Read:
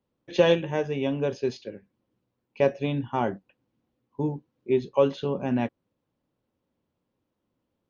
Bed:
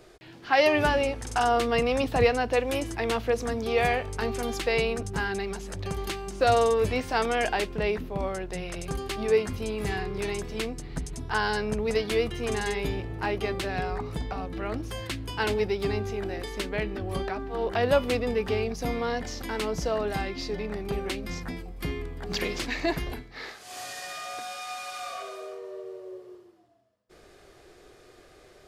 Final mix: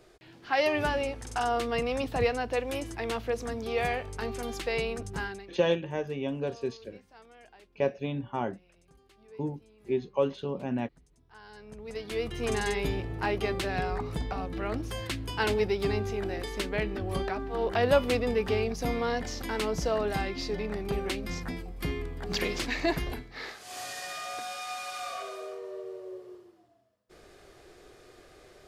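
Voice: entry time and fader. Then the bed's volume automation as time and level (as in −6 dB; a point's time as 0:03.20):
5.20 s, −5.5 dB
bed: 0:05.25 −5 dB
0:05.67 −28.5 dB
0:11.26 −28.5 dB
0:12.44 −0.5 dB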